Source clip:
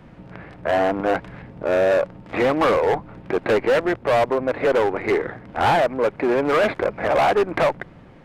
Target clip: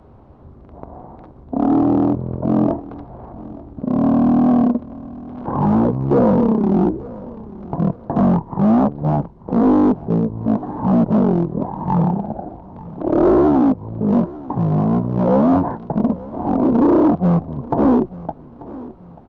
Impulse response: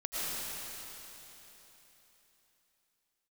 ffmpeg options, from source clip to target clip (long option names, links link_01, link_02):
-filter_complex "[0:a]lowshelf=frequency=300:gain=-9.5,acrossover=split=3300[link_01][link_02];[link_02]acompressor=threshold=-44dB:ratio=4:attack=1:release=60[link_03];[link_01][link_03]amix=inputs=2:normalize=0,firequalizer=gain_entry='entry(2500,0);entry(4400,-7);entry(7000,-3)':delay=0.05:min_phase=1,aecho=1:1:379|758|1137:0.112|0.0381|0.013,asetrate=18846,aresample=44100,volume=5.5dB"